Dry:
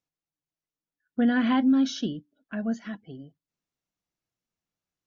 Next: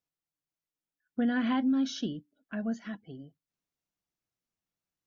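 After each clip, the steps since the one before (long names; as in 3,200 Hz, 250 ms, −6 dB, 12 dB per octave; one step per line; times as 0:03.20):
downward compressor 1.5 to 1, threshold −26 dBFS, peak gain reduction 3.5 dB
level −3 dB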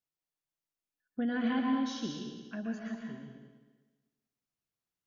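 convolution reverb RT60 1.3 s, pre-delay 115 ms, DRR 1 dB
level −4.5 dB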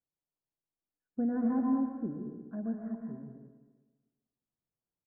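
Gaussian smoothing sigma 8.3 samples
single-tap delay 305 ms −23.5 dB
level +2 dB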